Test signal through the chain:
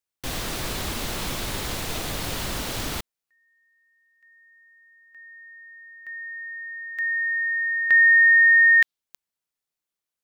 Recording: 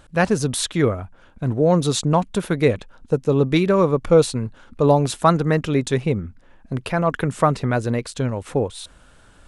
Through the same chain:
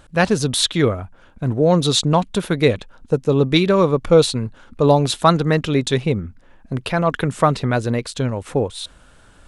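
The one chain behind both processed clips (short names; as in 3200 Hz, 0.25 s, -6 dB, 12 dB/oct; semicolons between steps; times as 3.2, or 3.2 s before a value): dynamic EQ 3700 Hz, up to +8 dB, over -42 dBFS, Q 1.7; gain +1.5 dB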